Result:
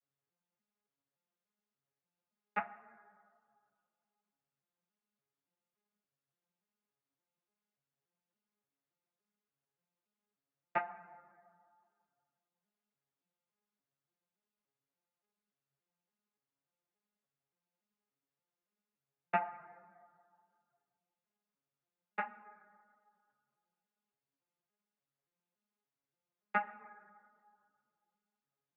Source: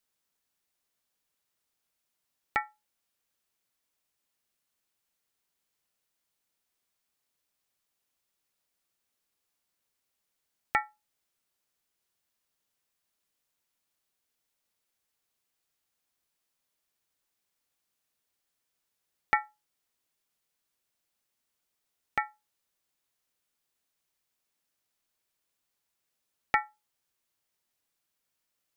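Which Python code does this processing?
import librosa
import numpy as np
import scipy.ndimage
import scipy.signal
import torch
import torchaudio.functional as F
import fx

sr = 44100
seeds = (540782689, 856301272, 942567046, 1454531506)

y = fx.vocoder_arp(x, sr, chord='major triad', root=49, every_ms=287)
y = fx.high_shelf(y, sr, hz=5000.0, db=-10.0)
y = fx.rev_plate(y, sr, seeds[0], rt60_s=2.1, hf_ratio=0.35, predelay_ms=0, drr_db=13.0)
y = fx.ensemble(y, sr)
y = y * 10.0 ** (-1.5 / 20.0)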